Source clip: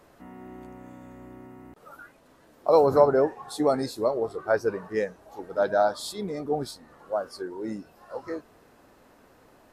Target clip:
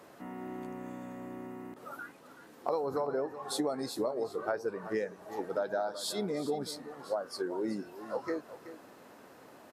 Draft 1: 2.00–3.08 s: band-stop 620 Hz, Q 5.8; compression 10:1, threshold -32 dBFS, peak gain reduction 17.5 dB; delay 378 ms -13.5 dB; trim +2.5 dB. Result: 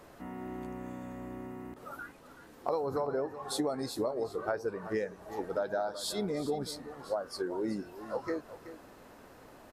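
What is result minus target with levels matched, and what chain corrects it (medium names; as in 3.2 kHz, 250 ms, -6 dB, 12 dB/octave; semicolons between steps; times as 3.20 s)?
125 Hz band +3.0 dB
2.00–3.08 s: band-stop 620 Hz, Q 5.8; compression 10:1, threshold -32 dBFS, peak gain reduction 17.5 dB; high-pass 150 Hz 12 dB/octave; delay 378 ms -13.5 dB; trim +2.5 dB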